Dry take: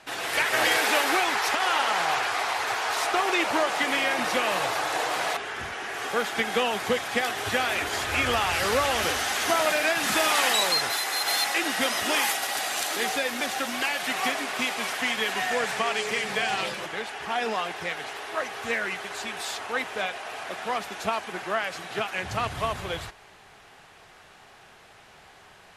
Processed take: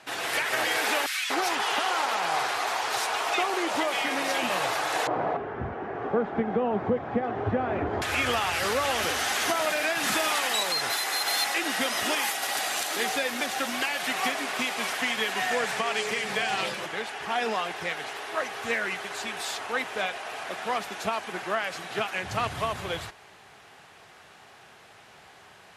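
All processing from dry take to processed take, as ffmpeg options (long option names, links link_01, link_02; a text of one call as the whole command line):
ffmpeg -i in.wav -filter_complex "[0:a]asettb=1/sr,asplit=3[link_01][link_02][link_03];[link_01]atrim=end=1.064[link_04];[link_02]atrim=start=1.06:end=4.5,asetpts=PTS-STARTPTS,afade=type=in:duration=0.004:curve=qsin,afade=type=out:start_time=3.436:duration=0.004:curve=qsin,highpass=100,acrossover=split=1800[link_05][link_06];[link_05]adelay=240[link_07];[link_07][link_06]amix=inputs=2:normalize=0,atrim=end_sample=151704[link_08];[link_03]atrim=start=4.496[link_09];[link_04][link_08]acrossfade=duration=0.004:curve1=hsin:curve2=qsin[link_10];[link_10][link_09]acrossfade=duration=0.004:curve1=qsin:curve2=hsin,asettb=1/sr,asplit=3[link_11][link_12][link_13];[link_11]atrim=end=5.074[link_14];[link_12]atrim=start=5.07:end=8.02,asetpts=PTS-STARTPTS,afade=type=in:duration=0.004:curve=qsin,afade=type=out:start_time=2.946:duration=0.004:curve=qsin,lowpass=1000,lowshelf=frequency=450:gain=12[link_15];[link_13]atrim=start=8.016[link_16];[link_14][link_15]acrossfade=duration=0.004:curve1=hsin:curve2=qsin[link_17];[link_17][link_16]acrossfade=duration=0.004:curve1=qsin:curve2=hsin,highpass=75,alimiter=limit=-16dB:level=0:latency=1:release=178" out.wav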